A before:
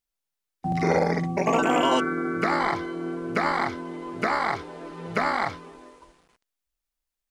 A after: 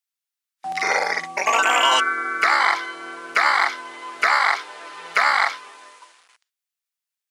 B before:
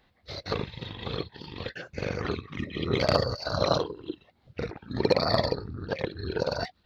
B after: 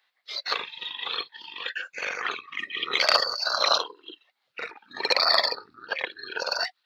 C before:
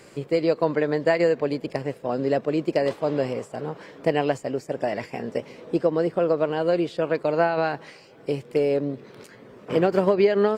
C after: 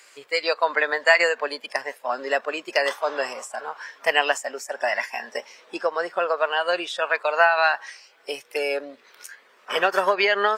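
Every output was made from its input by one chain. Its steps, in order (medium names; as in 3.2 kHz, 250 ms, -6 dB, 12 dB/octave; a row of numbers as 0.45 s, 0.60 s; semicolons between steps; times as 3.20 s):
spectral noise reduction 11 dB; high-pass 1.3 kHz 12 dB/octave; peak normalisation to -3 dBFS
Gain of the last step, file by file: +11.5 dB, +10.5 dB, +13.5 dB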